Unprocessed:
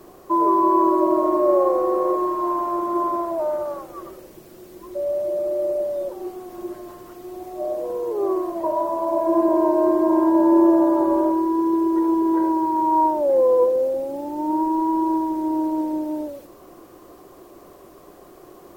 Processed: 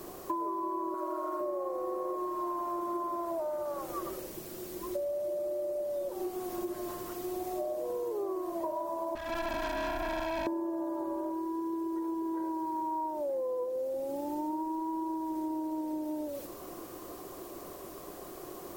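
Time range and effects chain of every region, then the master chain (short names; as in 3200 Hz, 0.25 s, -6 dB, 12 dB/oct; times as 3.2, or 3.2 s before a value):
0.94–1.41 HPF 540 Hz 6 dB/oct + bell 1400 Hz +14 dB 0.24 oct
9.15–10.47 minimum comb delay 1.2 ms + tube stage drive 26 dB, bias 0.6
whole clip: compressor 12:1, threshold -32 dBFS; high shelf 3700 Hz +7 dB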